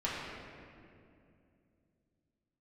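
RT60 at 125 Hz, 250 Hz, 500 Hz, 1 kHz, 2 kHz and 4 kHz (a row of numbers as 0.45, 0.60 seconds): 3.6, 3.5, 2.9, 2.2, 2.0, 1.5 seconds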